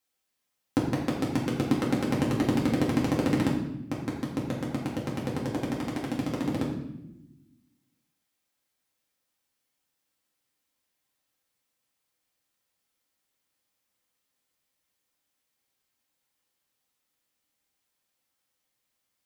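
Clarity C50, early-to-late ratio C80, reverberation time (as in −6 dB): 4.0 dB, 6.5 dB, 0.90 s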